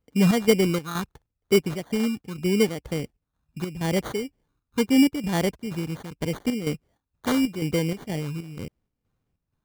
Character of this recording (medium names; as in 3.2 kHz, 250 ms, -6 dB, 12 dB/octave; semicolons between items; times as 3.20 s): phasing stages 6, 0.8 Hz, lowest notch 570–2200 Hz; aliases and images of a low sample rate 2.6 kHz, jitter 0%; chopped level 2.1 Hz, depth 60%, duty 65%